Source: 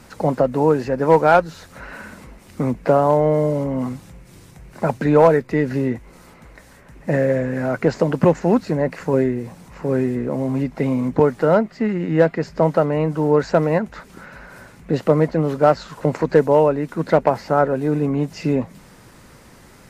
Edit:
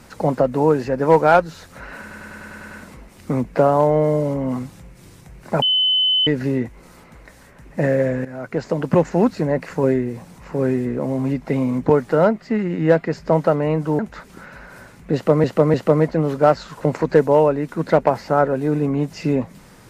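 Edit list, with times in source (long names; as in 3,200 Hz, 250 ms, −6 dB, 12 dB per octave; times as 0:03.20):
0:02.01: stutter 0.10 s, 8 plays
0:04.92–0:05.57: beep over 3,030 Hz −14 dBFS
0:07.55–0:08.39: fade in, from −13.5 dB
0:13.29–0:13.79: remove
0:14.94–0:15.24: repeat, 3 plays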